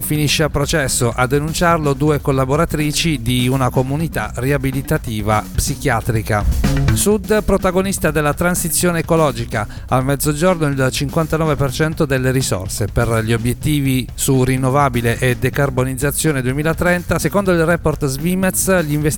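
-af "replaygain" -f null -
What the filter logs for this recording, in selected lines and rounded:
track_gain = -2.0 dB
track_peak = 0.591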